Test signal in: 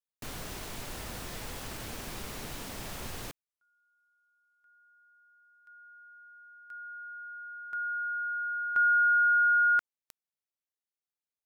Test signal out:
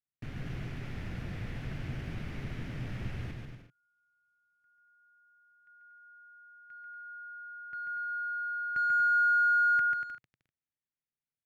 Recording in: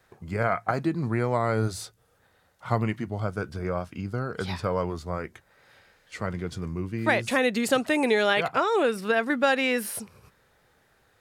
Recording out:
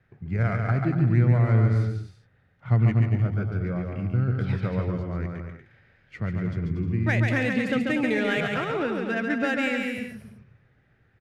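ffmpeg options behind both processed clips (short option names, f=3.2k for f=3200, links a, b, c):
-af "equalizer=f=125:t=o:w=1:g=9,equalizer=f=500:t=o:w=1:g=-5,equalizer=f=1k:t=o:w=1:g=-11,equalizer=f=2k:t=o:w=1:g=3,equalizer=f=4k:t=o:w=1:g=-7,equalizer=f=8k:t=o:w=1:g=-11,adynamicsmooth=sensitivity=4.5:basefreq=4.1k,aecho=1:1:140|238|306.6|354.6|388.2:0.631|0.398|0.251|0.158|0.1"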